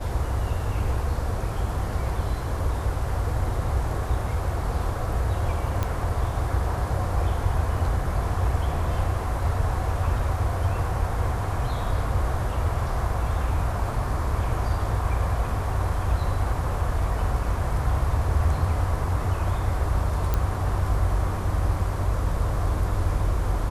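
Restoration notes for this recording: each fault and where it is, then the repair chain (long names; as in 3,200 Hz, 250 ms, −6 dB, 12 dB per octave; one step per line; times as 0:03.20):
0:05.83: click −13 dBFS
0:20.34: click −11 dBFS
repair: click removal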